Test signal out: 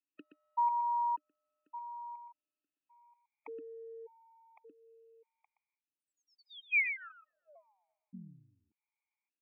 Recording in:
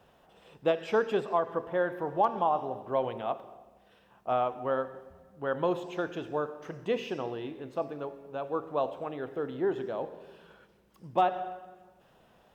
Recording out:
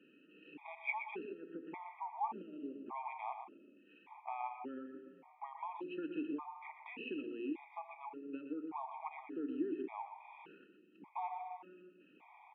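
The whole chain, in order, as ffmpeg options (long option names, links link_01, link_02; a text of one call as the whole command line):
ffmpeg -i in.wav -filter_complex "[0:a]bandreject=frequency=1300:width=26,alimiter=limit=-23dB:level=0:latency=1:release=54,acompressor=threshold=-45dB:ratio=2.5,aeval=exprs='0.0501*(cos(1*acos(clip(val(0)/0.0501,-1,1)))-cos(1*PI/2))+0.000282*(cos(6*acos(clip(val(0)/0.0501,-1,1)))-cos(6*PI/2))':channel_layout=same,asplit=3[link_01][link_02][link_03];[link_01]bandpass=frequency=300:width_type=q:width=8,volume=0dB[link_04];[link_02]bandpass=frequency=870:width_type=q:width=8,volume=-6dB[link_05];[link_03]bandpass=frequency=2240:width_type=q:width=8,volume=-9dB[link_06];[link_04][link_05][link_06]amix=inputs=3:normalize=0,highpass=frequency=190:width=0.5412,highpass=frequency=190:width=1.3066,equalizer=frequency=230:width_type=q:width=4:gain=-3,equalizer=frequency=330:width_type=q:width=4:gain=-4,equalizer=frequency=1100:width_type=q:width=4:gain=5,equalizer=frequency=1700:width_type=q:width=4:gain=8,equalizer=frequency=2400:width_type=q:width=4:gain=10,lowpass=frequency=3300:width=0.5412,lowpass=frequency=3300:width=1.3066,aecho=1:1:122:0.355,afftfilt=real='re*gt(sin(2*PI*0.86*pts/sr)*(1-2*mod(floor(b*sr/1024/630),2)),0)':imag='im*gt(sin(2*PI*0.86*pts/sr)*(1-2*mod(floor(b*sr/1024/630),2)),0)':win_size=1024:overlap=0.75,volume=16dB" out.wav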